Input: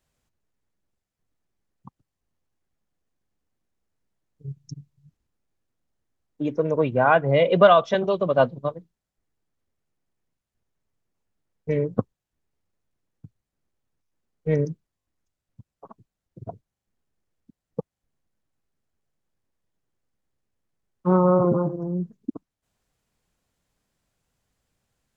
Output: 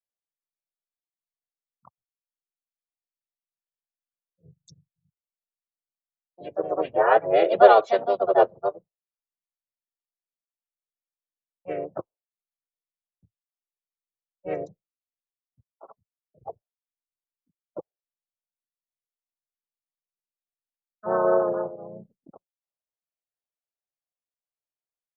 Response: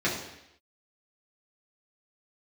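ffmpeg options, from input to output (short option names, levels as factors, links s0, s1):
-filter_complex "[0:a]afftdn=nr=23:nf=-46,lowshelf=f=420:t=q:w=3:g=-11,asplit=4[s0][s1][s2][s3];[s1]asetrate=29433,aresample=44100,atempo=1.49831,volume=0.501[s4];[s2]asetrate=37084,aresample=44100,atempo=1.18921,volume=0.447[s5];[s3]asetrate=52444,aresample=44100,atempo=0.840896,volume=0.794[s6];[s0][s4][s5][s6]amix=inputs=4:normalize=0,acrossover=split=140[s7][s8];[s7]acompressor=threshold=0.00355:ratio=6[s9];[s9][s8]amix=inputs=2:normalize=0,volume=0.398"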